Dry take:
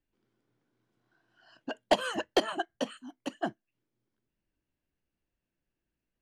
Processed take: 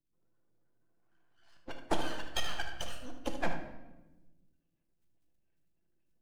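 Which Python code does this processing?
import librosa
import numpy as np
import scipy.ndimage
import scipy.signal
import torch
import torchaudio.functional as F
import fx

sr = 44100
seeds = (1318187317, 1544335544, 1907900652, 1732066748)

p1 = fx.spec_quant(x, sr, step_db=30)
p2 = fx.highpass(p1, sr, hz=1100.0, slope=12, at=(2.06, 2.86))
p3 = np.maximum(p2, 0.0)
p4 = p3 + fx.echo_single(p3, sr, ms=76, db=-10.5, dry=0)
p5 = fx.room_shoebox(p4, sr, seeds[0], volume_m3=510.0, walls='mixed', distance_m=0.81)
y = fx.rider(p5, sr, range_db=4, speed_s=0.5)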